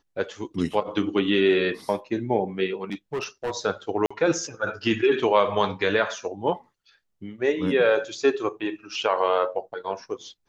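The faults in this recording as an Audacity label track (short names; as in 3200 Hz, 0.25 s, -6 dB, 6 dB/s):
2.920000	3.520000	clipped -24 dBFS
4.060000	4.110000	gap 45 ms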